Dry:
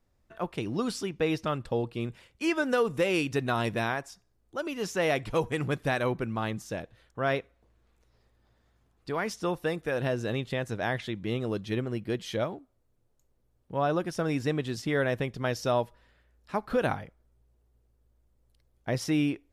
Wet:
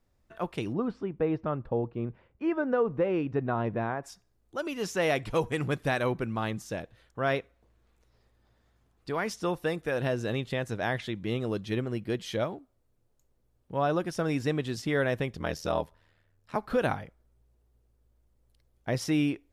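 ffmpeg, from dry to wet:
-filter_complex "[0:a]asplit=3[a][b][c];[a]afade=t=out:st=0.72:d=0.02[d];[b]lowpass=1.2k,afade=t=in:st=0.72:d=0.02,afade=t=out:st=4.02:d=0.02[e];[c]afade=t=in:st=4.02:d=0.02[f];[d][e][f]amix=inputs=3:normalize=0,asettb=1/sr,asplit=3[g][h][i];[g]atrim=end=15.364[j];[h]atrim=start=15.36:end=16.56,asetpts=PTS-STARTPTS,afade=t=in:d=0.004:c=qsin,afade=t=out:st=1.196:d=0.004:c=qsin,aeval=exprs='val(0)*sin(2*PI*40*n/s)':c=same[k];[i]atrim=start=16.556[l];[j][k]acrossfade=d=0.004:c1=hsin:c2=qsin[m];[m][l]acrossfade=d=0.004:c1=qsin:c2=hsin"

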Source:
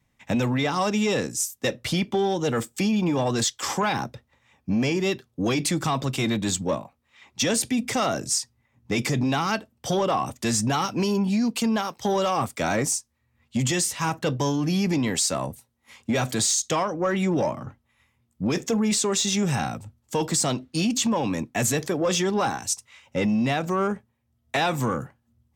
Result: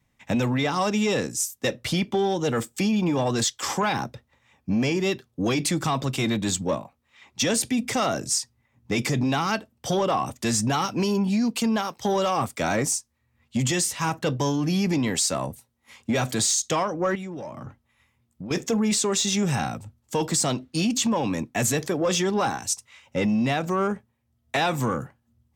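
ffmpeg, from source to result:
-filter_complex "[0:a]asettb=1/sr,asplit=3[a][b][c];[a]atrim=end=17.154[d];[b]atrim=start=17.15:end=18.51,asetpts=PTS-STARTPTS,afade=t=in:d=0.004:c=qsin,afade=t=out:st=1.356:d=0.004:c=qsin,acompressor=threshold=-33dB:ratio=6:attack=3.2:release=140:knee=1:detection=peak[e];[c]atrim=start=18.506[f];[d][e]acrossfade=d=0.004:c1=hsin:c2=qsin[g];[g][f]acrossfade=d=0.004:c1=qsin:c2=hsin"

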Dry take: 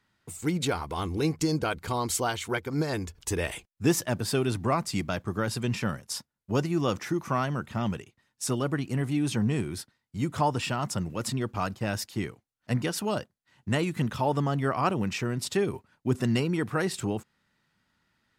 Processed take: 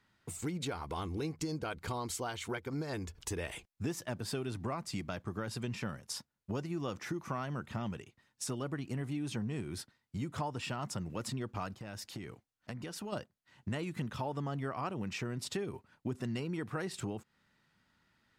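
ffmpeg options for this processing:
-filter_complex "[0:a]asplit=3[a][b][c];[a]afade=t=out:st=11.74:d=0.02[d];[b]acompressor=threshold=-38dB:ratio=10:attack=3.2:release=140:knee=1:detection=peak,afade=t=in:st=11.74:d=0.02,afade=t=out:st=13.12:d=0.02[e];[c]afade=t=in:st=13.12:d=0.02[f];[d][e][f]amix=inputs=3:normalize=0,acompressor=threshold=-36dB:ratio=4,highshelf=f=9k:g=-5.5"

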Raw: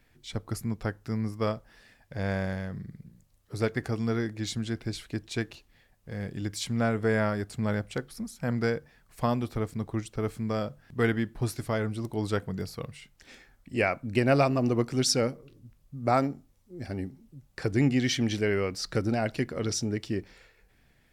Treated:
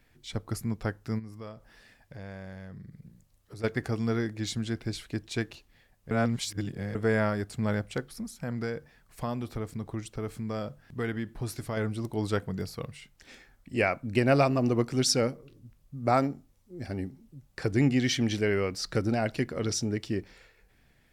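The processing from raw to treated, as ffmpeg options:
-filter_complex "[0:a]asplit=3[a][b][c];[a]afade=t=out:st=1.18:d=0.02[d];[b]acompressor=threshold=-43dB:ratio=3:attack=3.2:release=140:knee=1:detection=peak,afade=t=in:st=1.18:d=0.02,afade=t=out:st=3.63:d=0.02[e];[c]afade=t=in:st=3.63:d=0.02[f];[d][e][f]amix=inputs=3:normalize=0,asettb=1/sr,asplit=3[g][h][i];[g]atrim=end=8.064[j];[h]atrim=start=8.06:end=11.77,asetpts=PTS-STARTPTS,afade=t=in:d=0.004:c=qsin,afade=t=out:st=3.706:d=0.004:c=qsin,acompressor=threshold=-32dB:ratio=2:attack=3.2:release=140:knee=1:detection=peak[k];[i]atrim=start=11.766[l];[j][k]acrossfade=d=0.004:c1=hsin:c2=qsin[m];[m][l]acrossfade=d=0.004:c1=qsin:c2=hsin,asplit=3[n][o][p];[n]atrim=end=6.112[q];[o]atrim=start=6.108:end=6.952,asetpts=PTS-STARTPTS,areverse[r];[p]atrim=start=6.948[s];[q][r]acrossfade=d=0.004:c1=hsin:c2=hsin[t];[t][s]acrossfade=d=0.004:c1=hsin:c2=hsin"

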